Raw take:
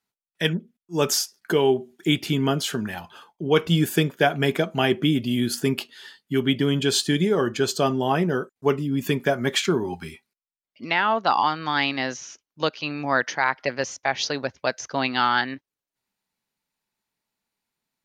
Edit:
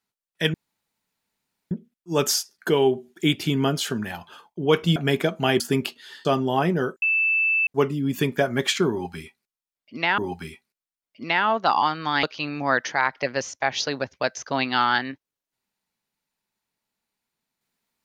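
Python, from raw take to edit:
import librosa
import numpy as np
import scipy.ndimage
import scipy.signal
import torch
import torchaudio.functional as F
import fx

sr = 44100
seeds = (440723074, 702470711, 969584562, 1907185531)

y = fx.edit(x, sr, fx.insert_room_tone(at_s=0.54, length_s=1.17),
    fx.cut(start_s=3.79, length_s=0.52),
    fx.cut(start_s=4.95, length_s=0.58),
    fx.cut(start_s=6.18, length_s=1.6),
    fx.insert_tone(at_s=8.55, length_s=0.65, hz=2640.0, db=-18.0),
    fx.repeat(start_s=9.79, length_s=1.27, count=2),
    fx.cut(start_s=11.84, length_s=0.82), tone=tone)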